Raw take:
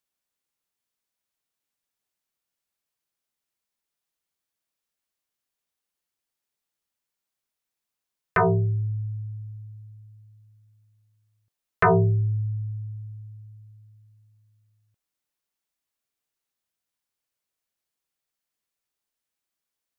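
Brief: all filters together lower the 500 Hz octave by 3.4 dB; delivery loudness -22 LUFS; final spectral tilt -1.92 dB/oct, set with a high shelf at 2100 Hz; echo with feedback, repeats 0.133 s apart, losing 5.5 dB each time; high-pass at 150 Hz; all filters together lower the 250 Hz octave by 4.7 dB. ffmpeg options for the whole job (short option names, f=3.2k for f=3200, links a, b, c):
-af "highpass=150,equalizer=f=250:t=o:g=-5.5,equalizer=f=500:t=o:g=-3.5,highshelf=f=2.1k:g=9,aecho=1:1:133|266|399|532|665|798|931:0.531|0.281|0.149|0.079|0.0419|0.0222|0.0118,volume=3.5dB"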